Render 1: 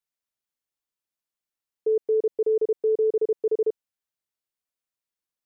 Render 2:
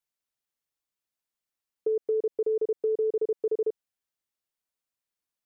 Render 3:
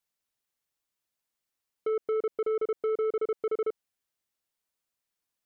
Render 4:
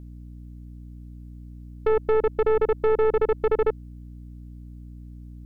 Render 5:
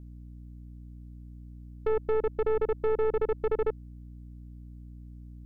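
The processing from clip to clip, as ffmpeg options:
ffmpeg -i in.wav -af "acompressor=threshold=-24dB:ratio=6" out.wav
ffmpeg -i in.wav -af "asoftclip=type=tanh:threshold=-28dB,volume=3dB" out.wav
ffmpeg -i in.wav -af "aeval=exprs='val(0)+0.00447*(sin(2*PI*60*n/s)+sin(2*PI*2*60*n/s)/2+sin(2*PI*3*60*n/s)/3+sin(2*PI*4*60*n/s)/4+sin(2*PI*5*60*n/s)/5)':channel_layout=same,aeval=exprs='0.0631*(cos(1*acos(clip(val(0)/0.0631,-1,1)))-cos(1*PI/2))+0.0178*(cos(2*acos(clip(val(0)/0.0631,-1,1)))-cos(2*PI/2))':channel_layout=same,volume=7.5dB" out.wav
ffmpeg -i in.wav -af "lowshelf=frequency=420:gain=4,volume=-8dB" out.wav

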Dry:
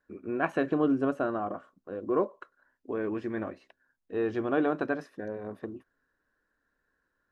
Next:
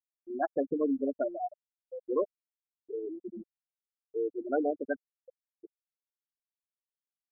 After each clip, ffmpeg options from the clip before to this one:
ffmpeg -i in.wav -af "afftfilt=real='re*gte(hypot(re,im),0.178)':imag='im*gte(hypot(re,im),0.178)':win_size=1024:overlap=0.75,aecho=1:1:1.5:0.44" out.wav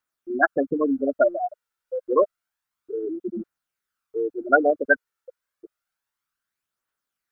ffmpeg -i in.wav -af "aphaser=in_gain=1:out_gain=1:delay=2.3:decay=0.38:speed=0.29:type=triangular,equalizer=frequency=1400:width=1.8:gain=13,volume=8dB" out.wav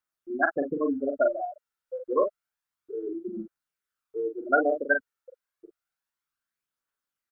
ffmpeg -i in.wav -filter_complex "[0:a]asplit=2[link_01][link_02];[link_02]adelay=42,volume=-6dB[link_03];[link_01][link_03]amix=inputs=2:normalize=0,volume=-5.5dB" out.wav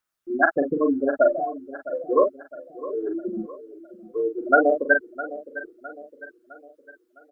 ffmpeg -i in.wav -af "aecho=1:1:659|1318|1977|2636:0.168|0.0755|0.034|0.0153,volume=5.5dB" out.wav

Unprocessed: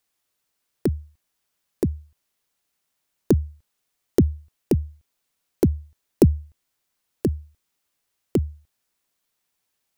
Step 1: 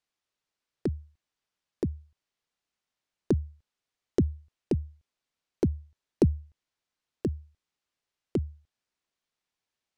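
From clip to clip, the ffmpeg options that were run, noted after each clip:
ffmpeg -i in.wav -af "lowpass=5900,volume=-7dB" out.wav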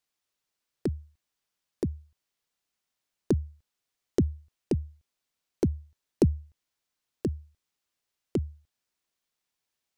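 ffmpeg -i in.wav -af "crystalizer=i=1:c=0" out.wav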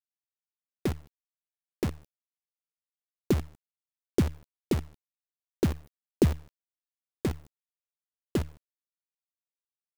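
ffmpeg -i in.wav -af "acrusher=bits=6:dc=4:mix=0:aa=0.000001" out.wav

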